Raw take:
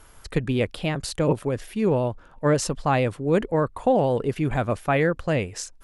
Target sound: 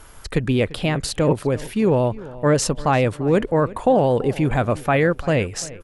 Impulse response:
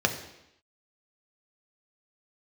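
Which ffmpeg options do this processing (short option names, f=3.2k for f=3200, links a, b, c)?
-filter_complex "[0:a]asplit=2[a][b];[b]alimiter=limit=-19dB:level=0:latency=1:release=84,volume=0dB[c];[a][c]amix=inputs=2:normalize=0,asplit=2[d][e];[e]adelay=344,lowpass=f=3.5k:p=1,volume=-18.5dB,asplit=2[f][g];[g]adelay=344,lowpass=f=3.5k:p=1,volume=0.37,asplit=2[h][i];[i]adelay=344,lowpass=f=3.5k:p=1,volume=0.37[j];[d][f][h][j]amix=inputs=4:normalize=0"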